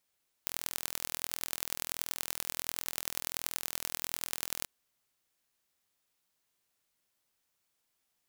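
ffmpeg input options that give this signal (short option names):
-f lavfi -i "aevalsrc='0.596*eq(mod(n,1065),0)*(0.5+0.5*eq(mod(n,4260),0))':d=4.18:s=44100"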